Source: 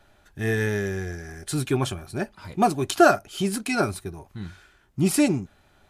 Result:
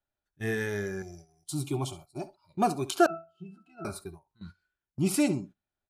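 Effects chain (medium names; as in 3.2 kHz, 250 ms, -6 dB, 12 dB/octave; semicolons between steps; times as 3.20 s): on a send: feedback delay 68 ms, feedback 29%, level -15 dB; on the sum: spectral noise reduction 13 dB; gate -39 dBFS, range -14 dB; 1.02–2.54 s: static phaser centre 320 Hz, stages 8; 3.06–3.85 s: pitch-class resonator E, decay 0.27 s; trim -5.5 dB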